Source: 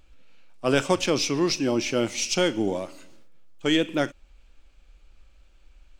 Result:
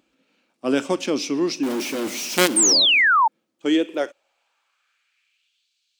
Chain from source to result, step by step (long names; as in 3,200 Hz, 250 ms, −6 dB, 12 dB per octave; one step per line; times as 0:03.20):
0:01.63–0:02.73: log-companded quantiser 2 bits
0:02.56–0:03.28: sound drawn into the spectrogram fall 840–9,100 Hz −13 dBFS
high-pass filter sweep 250 Hz → 4,000 Hz, 0:03.54–0:05.70
level −3 dB